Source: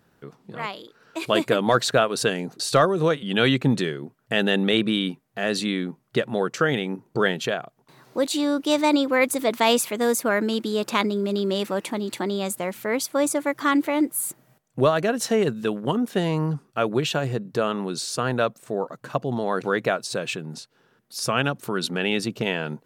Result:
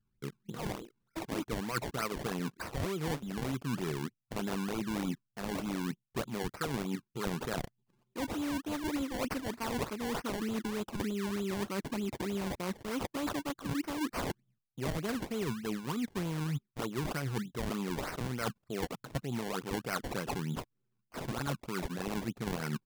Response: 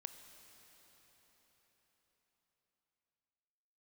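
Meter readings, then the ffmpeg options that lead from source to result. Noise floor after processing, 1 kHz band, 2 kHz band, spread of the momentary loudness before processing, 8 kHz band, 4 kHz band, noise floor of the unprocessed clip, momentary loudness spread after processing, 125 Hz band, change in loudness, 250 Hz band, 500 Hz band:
-82 dBFS, -13.0 dB, -14.0 dB, 10 LU, -14.0 dB, -15.5 dB, -64 dBFS, 5 LU, -8.0 dB, -13.0 dB, -10.5 dB, -15.5 dB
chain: -af "anlmdn=0.398,aecho=1:1:0.8:0.57,areverse,acompressor=threshold=-32dB:ratio=10,areverse,acrusher=samples=24:mix=1:aa=0.000001:lfo=1:lforange=24:lforate=3.3"

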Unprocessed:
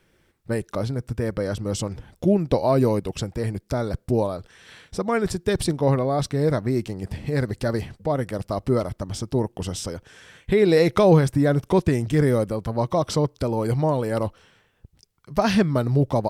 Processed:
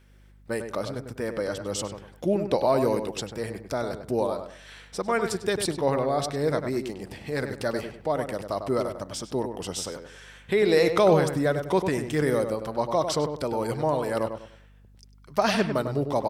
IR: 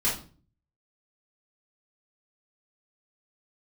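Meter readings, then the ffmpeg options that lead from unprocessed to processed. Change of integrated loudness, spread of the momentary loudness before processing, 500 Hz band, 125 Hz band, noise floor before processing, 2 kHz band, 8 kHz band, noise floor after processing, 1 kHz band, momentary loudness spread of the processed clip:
-3.5 dB, 11 LU, -2.0 dB, -10.0 dB, -64 dBFS, 0.0 dB, 0.0 dB, -54 dBFS, -0.5 dB, 12 LU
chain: -filter_complex "[0:a]highpass=f=480:p=1,aeval=exprs='val(0)+0.00158*(sin(2*PI*50*n/s)+sin(2*PI*2*50*n/s)/2+sin(2*PI*3*50*n/s)/3+sin(2*PI*4*50*n/s)/4+sin(2*PI*5*50*n/s)/5)':c=same,asplit=2[a][b];[b]adelay=99,lowpass=f=2.2k:p=1,volume=-7dB,asplit=2[c][d];[d]adelay=99,lowpass=f=2.2k:p=1,volume=0.31,asplit=2[e][f];[f]adelay=99,lowpass=f=2.2k:p=1,volume=0.31,asplit=2[g][h];[h]adelay=99,lowpass=f=2.2k:p=1,volume=0.31[i];[c][e][g][i]amix=inputs=4:normalize=0[j];[a][j]amix=inputs=2:normalize=0"

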